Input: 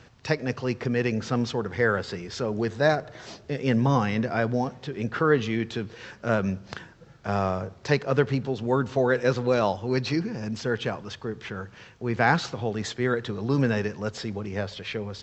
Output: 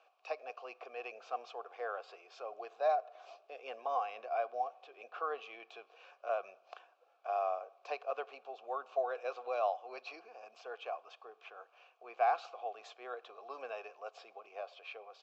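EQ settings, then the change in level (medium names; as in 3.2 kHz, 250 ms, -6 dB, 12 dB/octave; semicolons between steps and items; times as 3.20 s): vowel filter a; high-pass 450 Hz 24 dB/octave; treble shelf 4.9 kHz +6 dB; -1.0 dB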